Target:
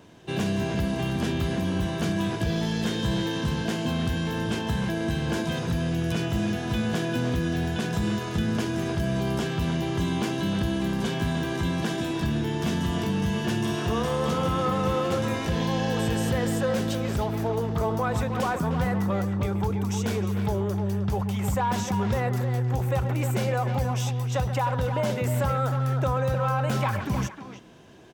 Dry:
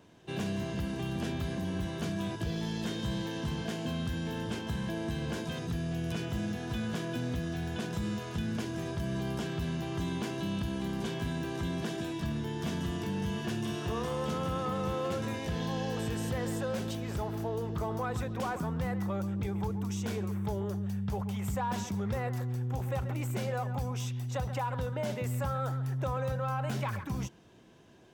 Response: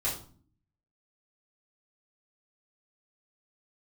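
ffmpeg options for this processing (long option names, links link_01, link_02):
-filter_complex "[0:a]asplit=2[link_01][link_02];[link_02]adelay=310,highpass=300,lowpass=3400,asoftclip=type=hard:threshold=-32dB,volume=-6dB[link_03];[link_01][link_03]amix=inputs=2:normalize=0,volume=7.5dB"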